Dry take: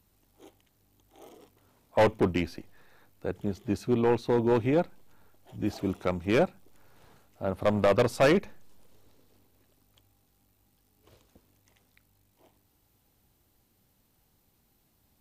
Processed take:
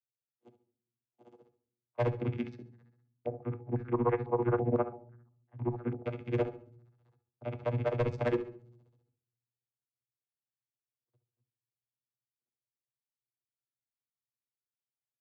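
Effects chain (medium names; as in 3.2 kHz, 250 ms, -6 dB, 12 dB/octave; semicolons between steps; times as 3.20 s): rattle on loud lows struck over -35 dBFS, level -21 dBFS; gate -54 dBFS, range -35 dB; hum notches 60/120/180/240 Hz; tremolo 15 Hz, depth 96%; vocoder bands 16, saw 120 Hz; hard clipper -22 dBFS, distortion -17 dB; distance through air 56 m; feedback delay 69 ms, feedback 26%, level -14 dB; reverberation RT60 0.60 s, pre-delay 6 ms, DRR 13.5 dB; 3.26–6.06 s: step-sequenced low-pass 6 Hz 710–1800 Hz; trim -1 dB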